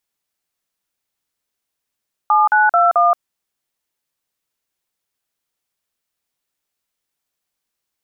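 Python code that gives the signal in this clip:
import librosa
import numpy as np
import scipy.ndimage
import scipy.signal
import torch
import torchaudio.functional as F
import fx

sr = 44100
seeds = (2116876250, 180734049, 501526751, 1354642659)

y = fx.dtmf(sr, digits='7921', tone_ms=175, gap_ms=44, level_db=-12.5)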